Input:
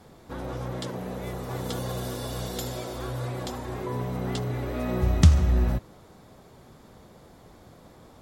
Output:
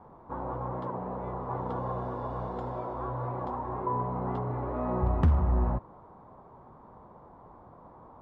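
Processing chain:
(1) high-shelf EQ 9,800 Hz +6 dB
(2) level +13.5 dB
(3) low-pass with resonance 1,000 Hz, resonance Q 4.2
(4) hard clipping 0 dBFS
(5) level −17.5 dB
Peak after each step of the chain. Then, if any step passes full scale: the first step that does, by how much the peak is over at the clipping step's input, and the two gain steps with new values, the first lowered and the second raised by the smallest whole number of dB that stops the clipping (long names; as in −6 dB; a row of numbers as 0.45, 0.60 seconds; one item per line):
−5.0, +8.5, +8.5, 0.0, −17.5 dBFS
step 2, 8.5 dB
step 2 +4.5 dB, step 5 −8.5 dB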